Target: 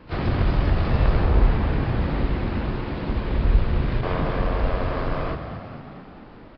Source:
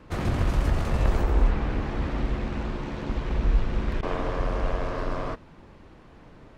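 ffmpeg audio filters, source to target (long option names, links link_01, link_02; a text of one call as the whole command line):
ffmpeg -i in.wav -filter_complex "[0:a]asplit=3[link_01][link_02][link_03];[link_02]asetrate=66075,aresample=44100,atempo=0.66742,volume=-16dB[link_04];[link_03]asetrate=88200,aresample=44100,atempo=0.5,volume=-15dB[link_05];[link_01][link_04][link_05]amix=inputs=3:normalize=0,asplit=9[link_06][link_07][link_08][link_09][link_10][link_11][link_12][link_13][link_14];[link_07]adelay=221,afreqshift=39,volume=-9.5dB[link_15];[link_08]adelay=442,afreqshift=78,volume=-13.7dB[link_16];[link_09]adelay=663,afreqshift=117,volume=-17.8dB[link_17];[link_10]adelay=884,afreqshift=156,volume=-22dB[link_18];[link_11]adelay=1105,afreqshift=195,volume=-26.1dB[link_19];[link_12]adelay=1326,afreqshift=234,volume=-30.3dB[link_20];[link_13]adelay=1547,afreqshift=273,volume=-34.4dB[link_21];[link_14]adelay=1768,afreqshift=312,volume=-38.6dB[link_22];[link_06][link_15][link_16][link_17][link_18][link_19][link_20][link_21][link_22]amix=inputs=9:normalize=0,aresample=11025,aresample=44100,volume=2.5dB" out.wav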